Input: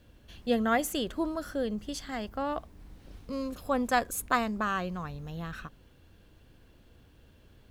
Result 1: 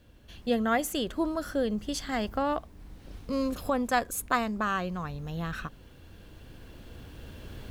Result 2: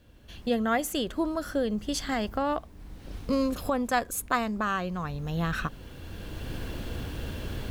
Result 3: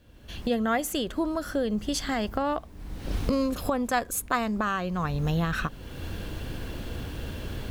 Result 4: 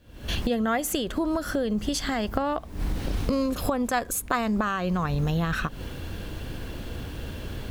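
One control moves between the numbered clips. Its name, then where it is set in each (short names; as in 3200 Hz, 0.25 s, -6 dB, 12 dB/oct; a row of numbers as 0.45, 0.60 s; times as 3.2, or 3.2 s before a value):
recorder AGC, rising by: 5, 13, 31, 80 dB/s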